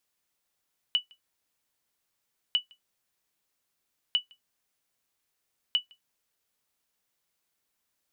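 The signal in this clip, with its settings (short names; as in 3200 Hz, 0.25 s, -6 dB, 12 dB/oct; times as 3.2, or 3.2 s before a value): sonar ping 2960 Hz, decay 0.12 s, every 1.60 s, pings 4, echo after 0.16 s, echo -29.5 dB -15.5 dBFS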